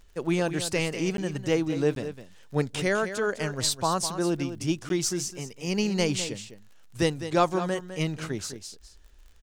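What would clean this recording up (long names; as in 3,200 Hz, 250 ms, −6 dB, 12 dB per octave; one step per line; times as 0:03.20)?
click removal
repair the gap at 0:01.17/0:01.95/0:04.89, 12 ms
echo removal 205 ms −11 dB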